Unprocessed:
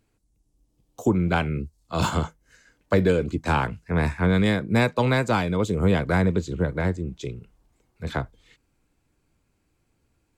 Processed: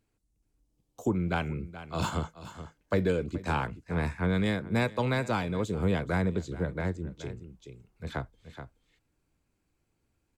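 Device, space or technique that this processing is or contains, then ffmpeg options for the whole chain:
ducked delay: -filter_complex "[0:a]asplit=3[a][b][c];[b]adelay=426,volume=-7.5dB[d];[c]apad=whole_len=476500[e];[d][e]sidechaincompress=threshold=-29dB:ratio=8:attack=30:release=950[f];[a][f]amix=inputs=2:normalize=0,volume=-7dB"

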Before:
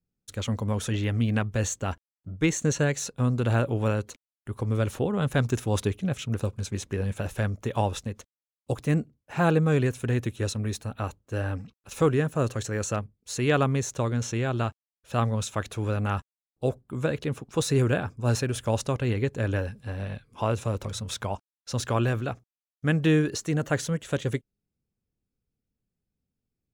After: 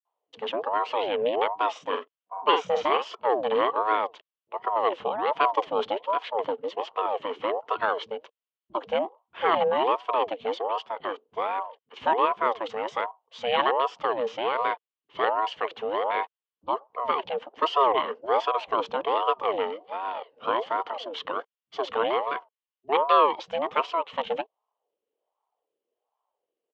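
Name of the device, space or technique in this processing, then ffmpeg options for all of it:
voice changer toy: -filter_complex "[0:a]equalizer=f=1.7k:w=4.4:g=-3,aeval=exprs='val(0)*sin(2*PI*600*n/s+600*0.45/1.3*sin(2*PI*1.3*n/s))':c=same,highpass=430,equalizer=f=460:t=q:w=4:g=8,equalizer=f=1.1k:t=q:w=4:g=7,equalizer=f=3k:t=q:w=4:g=9,lowpass=f=3.6k:w=0.5412,lowpass=f=3.6k:w=1.3066,asettb=1/sr,asplit=3[a][b][c];[a]atrim=end=1.664[d];[b]atrim=start=1.66:end=3.1,asetpts=PTS-STARTPTS,afade=t=in:d=0.004:c=qsin,afade=t=out:st=1.436:d=0.004:c=qsin,asplit=2[e][f];[f]adelay=47,volume=-6dB[g];[e][g]amix=inputs=2:normalize=0,atrim=end_sample=63504[h];[c]atrim=start=3.096[i];[d][h]acrossfade=d=0.004:c1=hsin:c2=qsin[j];[j][i]acrossfade=d=0.004:c1=qsin:c2=hsin,acrossover=split=170[k][l];[l]adelay=50[m];[k][m]amix=inputs=2:normalize=0,volume=1.5dB"

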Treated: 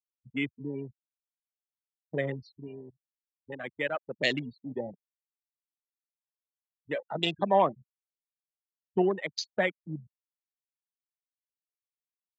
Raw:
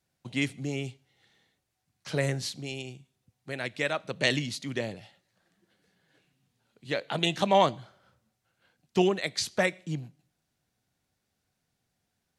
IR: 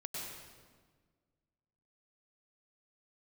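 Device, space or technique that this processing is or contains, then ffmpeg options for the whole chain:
over-cleaned archive recording: -af "afftfilt=real='re*gte(hypot(re,im),0.0562)':imag='im*gte(hypot(re,im),0.0562)':win_size=1024:overlap=0.75,highpass=180,lowpass=7.7k,afwtdn=0.0141,volume=-1dB"

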